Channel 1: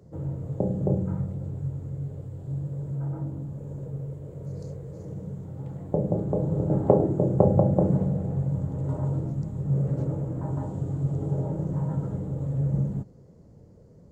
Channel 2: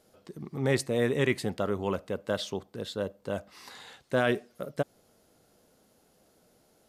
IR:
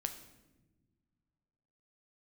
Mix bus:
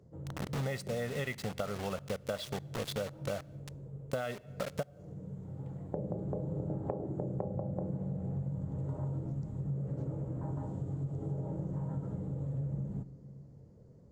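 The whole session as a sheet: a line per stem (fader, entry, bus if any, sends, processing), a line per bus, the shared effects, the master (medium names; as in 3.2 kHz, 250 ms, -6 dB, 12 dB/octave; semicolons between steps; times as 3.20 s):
-10.5 dB, 0.00 s, send -4 dB, auto duck -14 dB, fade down 0.25 s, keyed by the second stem
+1.5 dB, 0.00 s, send -16 dB, treble shelf 8.6 kHz -9 dB; comb 1.5 ms, depth 73%; word length cut 6-bit, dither none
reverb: on, pre-delay 8 ms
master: treble shelf 11 kHz -7 dB; compression 16:1, threshold -32 dBFS, peak gain reduction 17 dB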